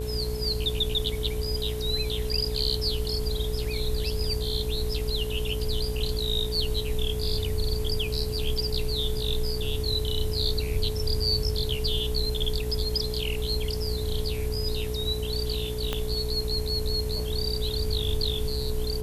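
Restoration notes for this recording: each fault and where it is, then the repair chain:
buzz 60 Hz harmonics 18 -32 dBFS
whine 430 Hz -33 dBFS
15.93 s: pop -13 dBFS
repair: de-click; band-stop 430 Hz, Q 30; de-hum 60 Hz, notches 18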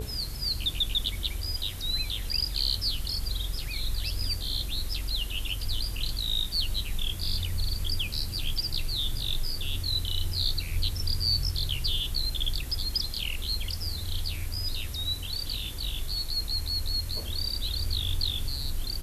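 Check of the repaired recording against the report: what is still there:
15.93 s: pop

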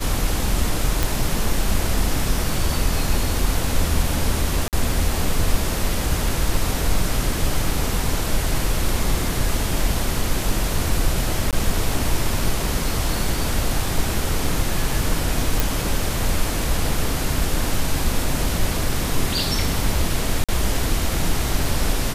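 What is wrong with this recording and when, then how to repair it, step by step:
1.03 s: pop
4.68–4.73 s: dropout 48 ms
11.51–11.53 s: dropout 17 ms
15.60 s: pop
20.44–20.49 s: dropout 46 ms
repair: de-click; interpolate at 4.68 s, 48 ms; interpolate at 11.51 s, 17 ms; interpolate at 20.44 s, 46 ms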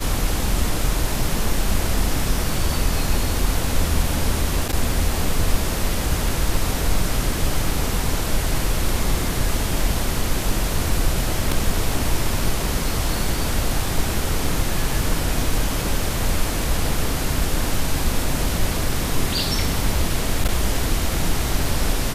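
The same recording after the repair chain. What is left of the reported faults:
nothing left

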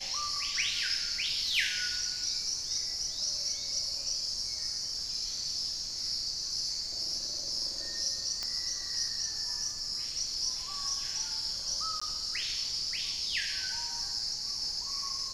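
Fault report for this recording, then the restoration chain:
8.43 s: pop -20 dBFS
12.00–12.02 s: dropout 15 ms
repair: de-click; interpolate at 12.00 s, 15 ms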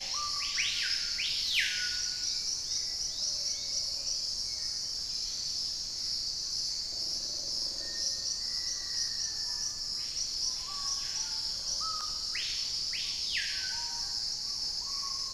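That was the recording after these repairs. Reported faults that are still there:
nothing left

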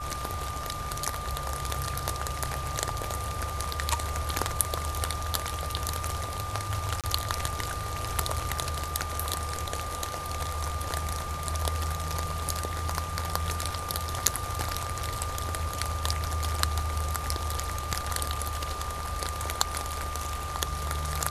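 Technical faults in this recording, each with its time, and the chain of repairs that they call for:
whine 1.2 kHz -36 dBFS
7.01–7.04 s: dropout 27 ms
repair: band-stop 1.2 kHz, Q 30; interpolate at 7.01 s, 27 ms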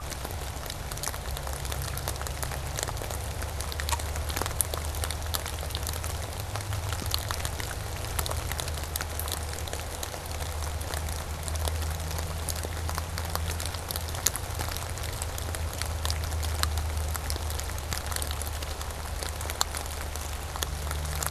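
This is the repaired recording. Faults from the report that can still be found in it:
nothing left

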